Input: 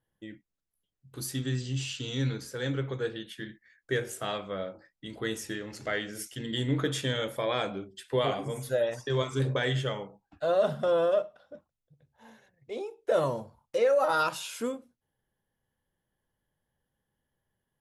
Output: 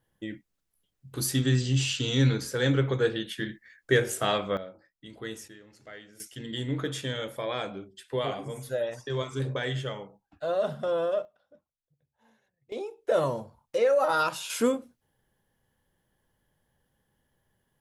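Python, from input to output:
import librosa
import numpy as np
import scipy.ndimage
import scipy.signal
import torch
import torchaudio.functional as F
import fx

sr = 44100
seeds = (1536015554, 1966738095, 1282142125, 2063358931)

y = fx.gain(x, sr, db=fx.steps((0.0, 7.0), (4.57, -5.0), (5.48, -14.0), (6.2, -2.5), (11.25, -11.0), (12.72, 1.0), (14.5, 8.0)))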